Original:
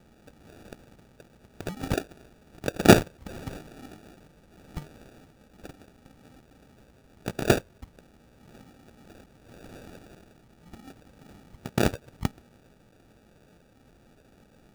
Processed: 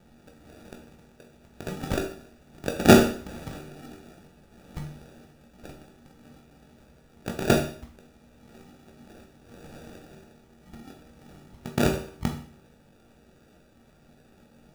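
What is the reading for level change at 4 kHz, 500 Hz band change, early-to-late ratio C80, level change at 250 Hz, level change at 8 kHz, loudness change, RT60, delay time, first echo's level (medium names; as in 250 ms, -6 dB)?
+1.0 dB, +1.5 dB, 11.5 dB, +2.5 dB, +1.0 dB, +1.0 dB, 0.50 s, no echo, no echo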